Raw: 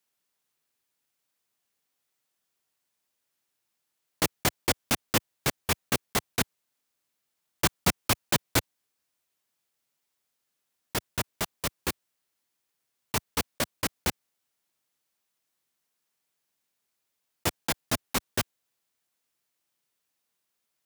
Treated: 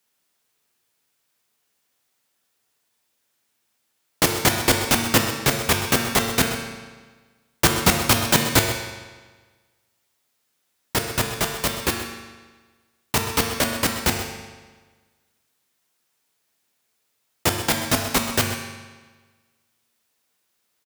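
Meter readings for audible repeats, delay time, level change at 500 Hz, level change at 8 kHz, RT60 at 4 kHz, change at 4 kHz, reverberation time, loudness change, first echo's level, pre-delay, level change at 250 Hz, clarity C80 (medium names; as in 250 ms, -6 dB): 1, 128 ms, +9.5 dB, +8.5 dB, 1.2 s, +9.0 dB, 1.4 s, +8.5 dB, -12.5 dB, 9 ms, +9.5 dB, 5.5 dB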